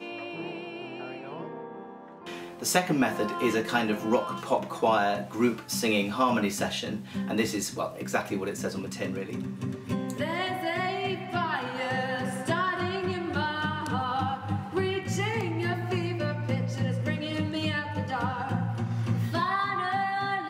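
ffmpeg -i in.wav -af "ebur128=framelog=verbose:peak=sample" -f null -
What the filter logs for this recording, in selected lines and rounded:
Integrated loudness:
  I:         -29.3 LUFS
  Threshold: -39.5 LUFS
Loudness range:
  LRA:         4.6 LU
  Threshold: -49.3 LUFS
  LRA low:   -31.6 LUFS
  LRA high:  -27.0 LUFS
Sample peak:
  Peak:       -9.7 dBFS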